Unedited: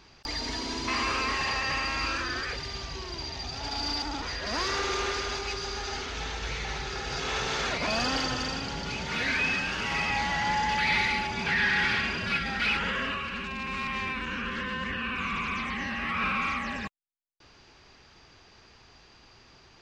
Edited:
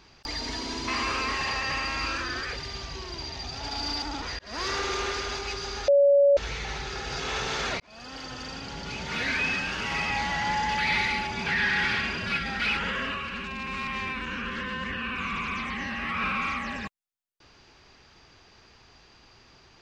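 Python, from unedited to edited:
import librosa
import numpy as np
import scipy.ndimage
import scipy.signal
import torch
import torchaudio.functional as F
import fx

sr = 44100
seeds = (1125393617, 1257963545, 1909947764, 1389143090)

y = fx.edit(x, sr, fx.fade_in_span(start_s=4.39, length_s=0.28),
    fx.bleep(start_s=5.88, length_s=0.49, hz=565.0, db=-15.0),
    fx.fade_in_span(start_s=7.8, length_s=1.37), tone=tone)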